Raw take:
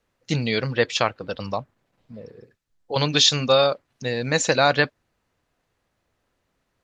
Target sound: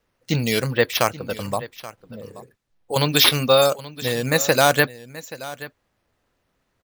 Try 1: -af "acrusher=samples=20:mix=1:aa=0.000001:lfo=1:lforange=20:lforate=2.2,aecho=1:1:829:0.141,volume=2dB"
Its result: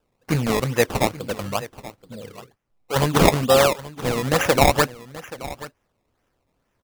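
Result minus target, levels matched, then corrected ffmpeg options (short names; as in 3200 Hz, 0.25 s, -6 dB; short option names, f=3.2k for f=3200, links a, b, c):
decimation with a swept rate: distortion +9 dB
-af "acrusher=samples=4:mix=1:aa=0.000001:lfo=1:lforange=4:lforate=2.2,aecho=1:1:829:0.141,volume=2dB"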